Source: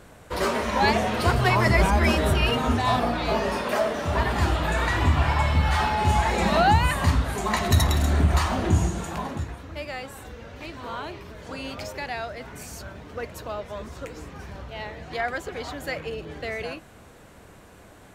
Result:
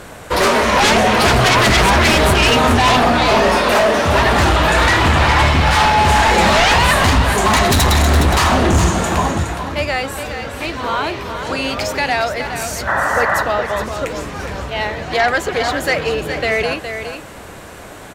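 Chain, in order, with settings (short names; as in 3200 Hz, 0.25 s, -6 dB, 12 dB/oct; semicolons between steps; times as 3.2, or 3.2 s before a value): low shelf 350 Hz -5.5 dB; sine folder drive 12 dB, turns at -9 dBFS; painted sound noise, 12.87–13.43, 530–2000 Hz -17 dBFS; echo 0.415 s -8.5 dB; Doppler distortion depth 0.13 ms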